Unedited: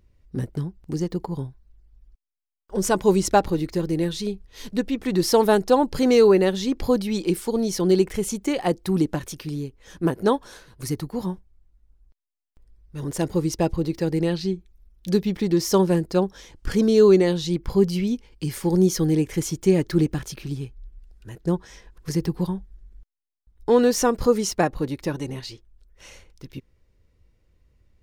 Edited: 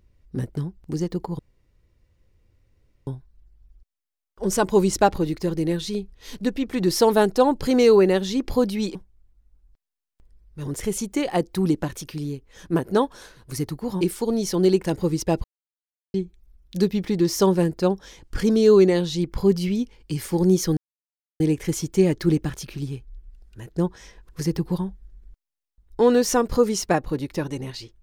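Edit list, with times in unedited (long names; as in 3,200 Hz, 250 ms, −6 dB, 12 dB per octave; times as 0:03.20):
0:01.39: splice in room tone 1.68 s
0:07.27–0:08.11: swap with 0:11.32–0:13.17
0:13.76–0:14.46: silence
0:19.09: splice in silence 0.63 s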